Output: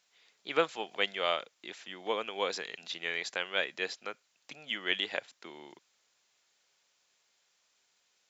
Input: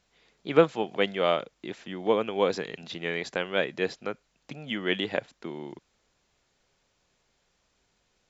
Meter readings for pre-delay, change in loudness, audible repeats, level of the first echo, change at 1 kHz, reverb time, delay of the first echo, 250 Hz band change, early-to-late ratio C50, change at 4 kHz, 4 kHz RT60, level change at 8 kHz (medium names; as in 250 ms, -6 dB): no reverb, -5.5 dB, no echo, no echo, -5.0 dB, no reverb, no echo, -14.0 dB, no reverb, +0.5 dB, no reverb, no reading